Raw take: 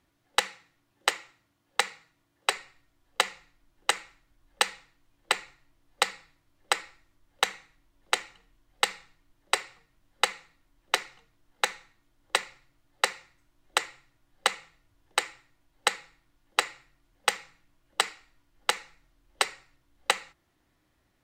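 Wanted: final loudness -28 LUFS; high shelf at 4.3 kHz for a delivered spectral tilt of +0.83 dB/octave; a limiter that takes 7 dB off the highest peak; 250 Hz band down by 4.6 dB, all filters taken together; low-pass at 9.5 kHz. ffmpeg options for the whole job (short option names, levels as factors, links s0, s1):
-af "lowpass=9500,equalizer=f=250:t=o:g=-8.5,highshelf=f=4300:g=-7,volume=2.99,alimiter=limit=0.75:level=0:latency=1"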